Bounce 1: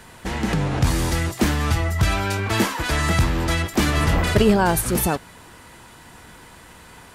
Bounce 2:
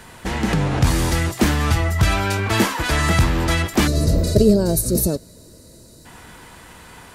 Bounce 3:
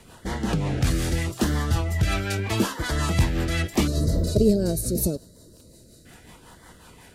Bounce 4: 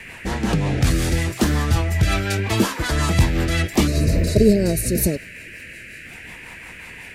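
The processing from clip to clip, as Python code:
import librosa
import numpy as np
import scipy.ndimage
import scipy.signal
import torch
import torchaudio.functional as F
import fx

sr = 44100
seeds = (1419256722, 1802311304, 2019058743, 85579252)

y1 = fx.spec_box(x, sr, start_s=3.87, length_s=2.19, low_hz=680.0, high_hz=3700.0, gain_db=-19)
y1 = y1 * 10.0 ** (2.5 / 20.0)
y2 = fx.dmg_crackle(y1, sr, seeds[0], per_s=12.0, level_db=-34.0)
y2 = fx.filter_lfo_notch(y2, sr, shape='sine', hz=0.79, low_hz=920.0, high_hz=2600.0, q=2.5)
y2 = fx.rotary(y2, sr, hz=5.5)
y2 = y2 * 10.0 ** (-3.5 / 20.0)
y3 = fx.dmg_noise_band(y2, sr, seeds[1], low_hz=1600.0, high_hz=2700.0, level_db=-44.0)
y3 = y3 * 10.0 ** (4.5 / 20.0)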